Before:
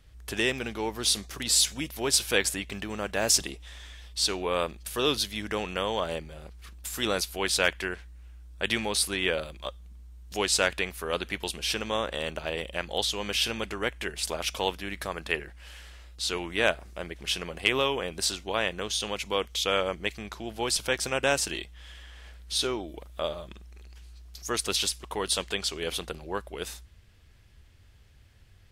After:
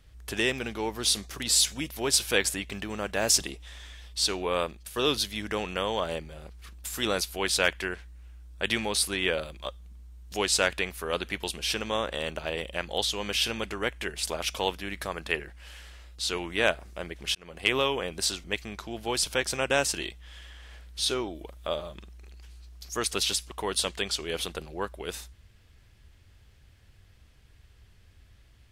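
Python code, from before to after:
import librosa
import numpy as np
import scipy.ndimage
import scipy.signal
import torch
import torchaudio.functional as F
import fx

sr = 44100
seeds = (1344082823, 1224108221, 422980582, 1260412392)

y = fx.edit(x, sr, fx.fade_out_to(start_s=4.58, length_s=0.38, floor_db=-6.5),
    fx.fade_in_span(start_s=17.35, length_s=0.35),
    fx.cut(start_s=18.44, length_s=1.53), tone=tone)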